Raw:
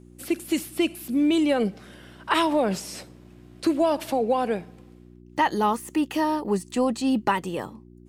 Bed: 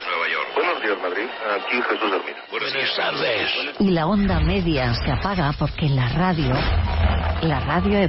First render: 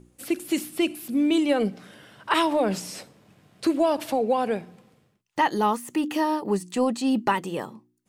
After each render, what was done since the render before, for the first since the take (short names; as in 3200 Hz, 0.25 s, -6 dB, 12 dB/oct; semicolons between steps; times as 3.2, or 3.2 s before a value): de-hum 60 Hz, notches 6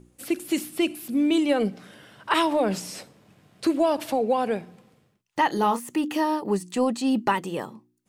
5.47–5.89 doubler 30 ms -9 dB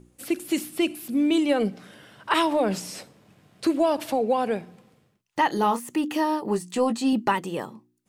6.42–7.13 doubler 18 ms -8 dB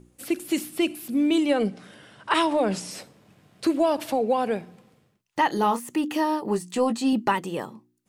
1.49–2.91 careless resampling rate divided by 2×, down none, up filtered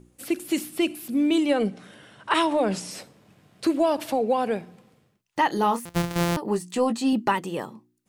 1.59–2.61 notch 4900 Hz; 5.85–6.37 sample sorter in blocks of 256 samples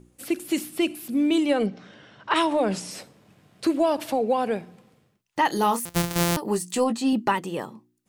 1.66–2.36 Chebyshev low-pass 5700 Hz, order 3; 5.45–6.84 high shelf 4700 Hz +10 dB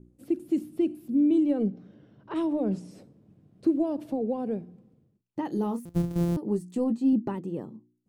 EQ curve 310 Hz 0 dB, 900 Hz -16 dB, 2000 Hz -22 dB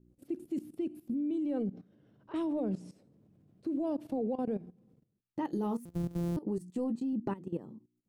level quantiser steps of 16 dB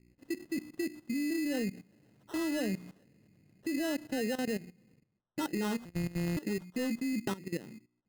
sample-rate reducer 2300 Hz, jitter 0%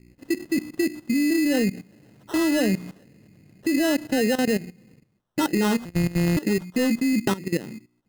gain +11.5 dB